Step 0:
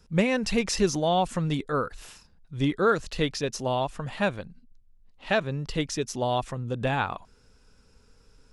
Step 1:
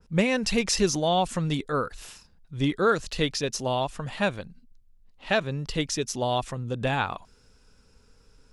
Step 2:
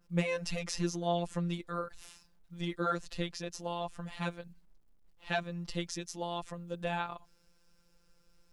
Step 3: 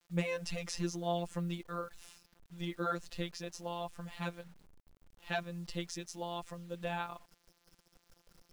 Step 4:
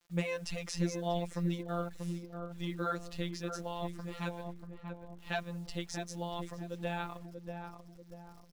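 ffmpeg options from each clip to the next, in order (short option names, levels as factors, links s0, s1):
-af "adynamicequalizer=threshold=0.00891:dfrequency=2500:dqfactor=0.7:tfrequency=2500:tqfactor=0.7:attack=5:release=100:ratio=0.375:range=2:mode=boostabove:tftype=highshelf"
-af "afftfilt=real='hypot(re,im)*cos(PI*b)':imag='0':win_size=1024:overlap=0.75,acrusher=bits=11:mix=0:aa=0.000001,adynamicequalizer=threshold=0.00794:dfrequency=2100:dqfactor=0.7:tfrequency=2100:tqfactor=0.7:attack=5:release=100:ratio=0.375:range=3:mode=cutabove:tftype=highshelf,volume=0.531"
-af "acrusher=bits=9:mix=0:aa=0.000001,volume=0.708"
-filter_complex "[0:a]asplit=2[s0][s1];[s1]adelay=638,lowpass=f=930:p=1,volume=0.596,asplit=2[s2][s3];[s3]adelay=638,lowpass=f=930:p=1,volume=0.46,asplit=2[s4][s5];[s5]adelay=638,lowpass=f=930:p=1,volume=0.46,asplit=2[s6][s7];[s7]adelay=638,lowpass=f=930:p=1,volume=0.46,asplit=2[s8][s9];[s9]adelay=638,lowpass=f=930:p=1,volume=0.46,asplit=2[s10][s11];[s11]adelay=638,lowpass=f=930:p=1,volume=0.46[s12];[s0][s2][s4][s6][s8][s10][s12]amix=inputs=7:normalize=0"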